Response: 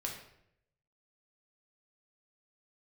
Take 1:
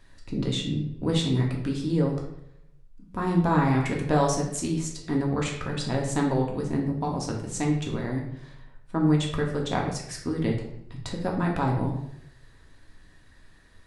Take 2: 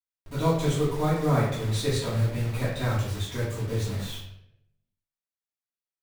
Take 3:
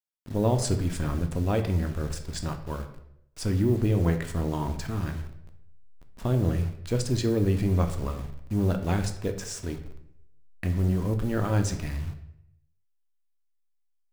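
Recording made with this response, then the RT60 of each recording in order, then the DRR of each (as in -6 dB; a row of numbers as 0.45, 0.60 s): 1; 0.75, 0.75, 0.75 s; -1.0, -10.0, 5.5 dB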